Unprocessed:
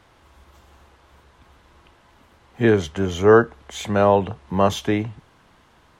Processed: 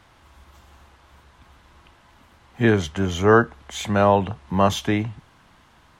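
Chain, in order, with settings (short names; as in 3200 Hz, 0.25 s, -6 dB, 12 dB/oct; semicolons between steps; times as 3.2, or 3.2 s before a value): bell 440 Hz -5.5 dB 0.89 oct; gain +1.5 dB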